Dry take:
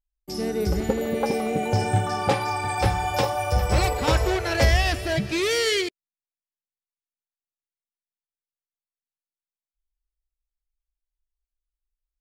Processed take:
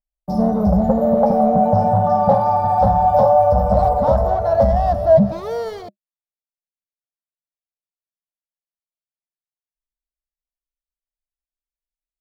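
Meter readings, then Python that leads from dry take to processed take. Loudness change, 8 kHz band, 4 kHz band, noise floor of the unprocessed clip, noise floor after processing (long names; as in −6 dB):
+8.0 dB, below −15 dB, below −15 dB, below −85 dBFS, below −85 dBFS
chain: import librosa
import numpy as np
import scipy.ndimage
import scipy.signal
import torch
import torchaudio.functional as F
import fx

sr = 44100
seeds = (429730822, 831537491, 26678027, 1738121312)

y = fx.rider(x, sr, range_db=5, speed_s=0.5)
y = fx.leveller(y, sr, passes=3)
y = fx.curve_eq(y, sr, hz=(140.0, 200.0, 360.0, 610.0, 1200.0, 2500.0, 3700.0, 5600.0, 7900.0, 13000.0), db=(0, 10, -18, 13, -4, -30, -20, -21, -29, -17))
y = y * librosa.db_to_amplitude(-4.5)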